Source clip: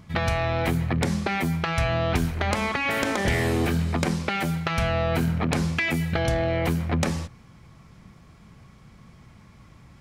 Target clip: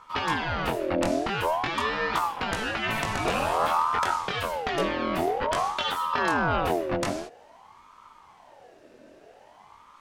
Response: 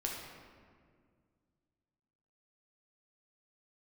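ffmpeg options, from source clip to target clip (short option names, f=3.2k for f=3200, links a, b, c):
-af "flanger=delay=17:depth=7.4:speed=0.39,aeval=exprs='val(0)*sin(2*PI*780*n/s+780*0.45/0.5*sin(2*PI*0.5*n/s))':c=same,volume=3dB"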